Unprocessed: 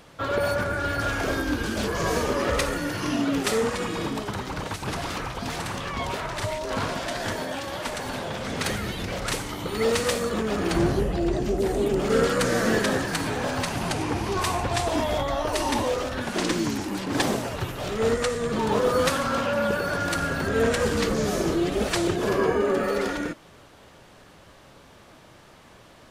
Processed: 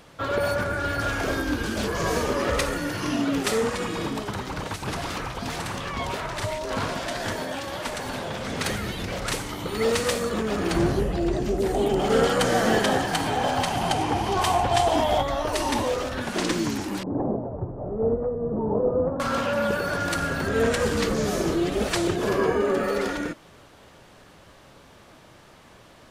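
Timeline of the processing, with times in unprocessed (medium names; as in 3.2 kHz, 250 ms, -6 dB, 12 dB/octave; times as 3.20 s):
11.74–15.22 s: small resonant body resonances 770/3100 Hz, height 11 dB, ringing for 20 ms
17.03–19.20 s: inverse Chebyshev low-pass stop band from 4.5 kHz, stop band 80 dB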